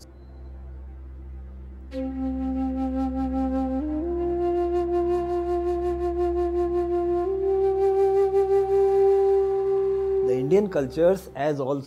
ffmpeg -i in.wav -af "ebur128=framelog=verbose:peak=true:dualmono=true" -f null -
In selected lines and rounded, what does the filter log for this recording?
Integrated loudness:
  I:         -20.7 LUFS
  Threshold: -31.4 LUFS
Loudness range:
  LRA:         7.5 LU
  Threshold: -41.0 LUFS
  LRA low:   -26.0 LUFS
  LRA high:  -18.5 LUFS
True peak:
  Peak:       -9.6 dBFS